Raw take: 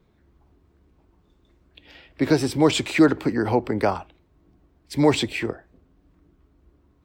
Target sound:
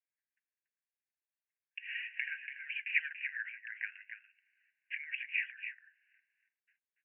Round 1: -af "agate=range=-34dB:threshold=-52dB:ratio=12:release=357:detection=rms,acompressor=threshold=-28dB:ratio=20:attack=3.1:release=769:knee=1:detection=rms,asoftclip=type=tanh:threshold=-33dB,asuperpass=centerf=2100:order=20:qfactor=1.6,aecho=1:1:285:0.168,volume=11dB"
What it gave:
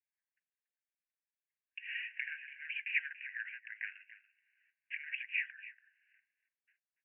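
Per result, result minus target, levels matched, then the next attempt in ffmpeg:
soft clipping: distortion +14 dB; echo-to-direct −7 dB
-af "agate=range=-34dB:threshold=-52dB:ratio=12:release=357:detection=rms,acompressor=threshold=-28dB:ratio=20:attack=3.1:release=769:knee=1:detection=rms,asoftclip=type=tanh:threshold=-23dB,asuperpass=centerf=2100:order=20:qfactor=1.6,aecho=1:1:285:0.168,volume=11dB"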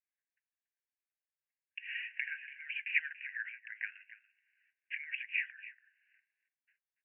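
echo-to-direct −7 dB
-af "agate=range=-34dB:threshold=-52dB:ratio=12:release=357:detection=rms,acompressor=threshold=-28dB:ratio=20:attack=3.1:release=769:knee=1:detection=rms,asoftclip=type=tanh:threshold=-23dB,asuperpass=centerf=2100:order=20:qfactor=1.6,aecho=1:1:285:0.376,volume=11dB"

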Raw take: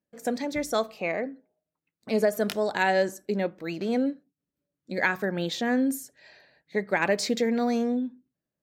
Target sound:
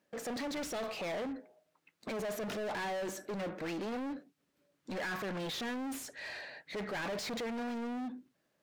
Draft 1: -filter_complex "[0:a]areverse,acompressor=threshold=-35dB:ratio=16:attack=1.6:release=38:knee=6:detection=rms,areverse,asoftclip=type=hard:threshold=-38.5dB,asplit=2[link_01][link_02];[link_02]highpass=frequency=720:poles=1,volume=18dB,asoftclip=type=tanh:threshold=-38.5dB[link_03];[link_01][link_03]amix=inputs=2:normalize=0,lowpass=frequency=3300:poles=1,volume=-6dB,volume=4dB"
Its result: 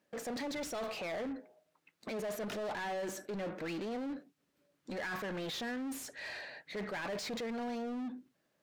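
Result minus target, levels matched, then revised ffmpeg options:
downward compressor: peak gain reduction +9.5 dB
-filter_complex "[0:a]areverse,acompressor=threshold=-25dB:ratio=16:attack=1.6:release=38:knee=6:detection=rms,areverse,asoftclip=type=hard:threshold=-38.5dB,asplit=2[link_01][link_02];[link_02]highpass=frequency=720:poles=1,volume=18dB,asoftclip=type=tanh:threshold=-38.5dB[link_03];[link_01][link_03]amix=inputs=2:normalize=0,lowpass=frequency=3300:poles=1,volume=-6dB,volume=4dB"

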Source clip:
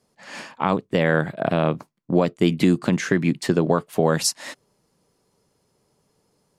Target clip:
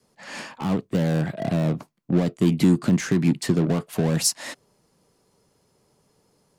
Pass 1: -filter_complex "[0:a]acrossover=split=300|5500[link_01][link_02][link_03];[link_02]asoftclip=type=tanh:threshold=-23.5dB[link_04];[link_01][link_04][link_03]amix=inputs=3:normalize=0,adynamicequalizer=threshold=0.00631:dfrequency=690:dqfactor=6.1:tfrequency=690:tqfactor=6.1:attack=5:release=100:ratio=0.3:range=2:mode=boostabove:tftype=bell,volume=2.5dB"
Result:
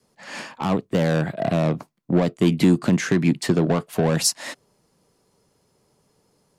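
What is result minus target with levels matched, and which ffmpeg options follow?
soft clipping: distortion −4 dB
-filter_complex "[0:a]acrossover=split=300|5500[link_01][link_02][link_03];[link_02]asoftclip=type=tanh:threshold=-32.5dB[link_04];[link_01][link_04][link_03]amix=inputs=3:normalize=0,adynamicequalizer=threshold=0.00631:dfrequency=690:dqfactor=6.1:tfrequency=690:tqfactor=6.1:attack=5:release=100:ratio=0.3:range=2:mode=boostabove:tftype=bell,volume=2.5dB"

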